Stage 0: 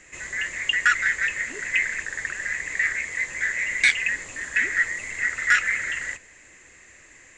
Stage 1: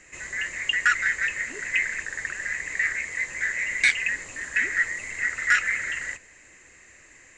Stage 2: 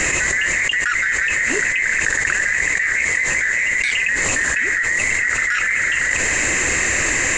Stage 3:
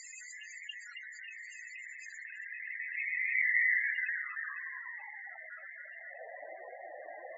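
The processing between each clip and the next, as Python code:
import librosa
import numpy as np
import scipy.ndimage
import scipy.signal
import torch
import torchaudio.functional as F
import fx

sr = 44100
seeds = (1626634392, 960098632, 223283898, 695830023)

y1 = fx.notch(x, sr, hz=3400.0, q=15.0)
y1 = F.gain(torch.from_numpy(y1), -1.5).numpy()
y2 = fx.env_flatten(y1, sr, amount_pct=100)
y2 = F.gain(torch.from_numpy(y2), -2.5).numpy()
y3 = fx.echo_feedback(y2, sr, ms=275, feedback_pct=59, wet_db=-6)
y3 = fx.filter_sweep_bandpass(y3, sr, from_hz=4700.0, to_hz=690.0, start_s=2.06, end_s=5.46, q=5.0)
y3 = fx.spec_topn(y3, sr, count=16)
y3 = F.gain(torch.from_numpy(y3), -8.0).numpy()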